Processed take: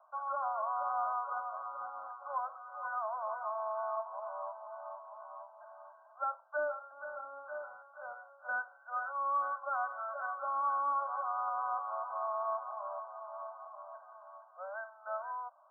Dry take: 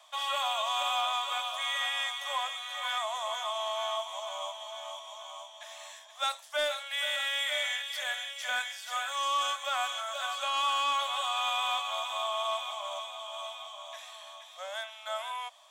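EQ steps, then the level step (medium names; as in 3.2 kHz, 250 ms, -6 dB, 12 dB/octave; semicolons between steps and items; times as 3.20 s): brick-wall FIR low-pass 1.6 kHz; bass shelf 170 Hz -9 dB; -2.0 dB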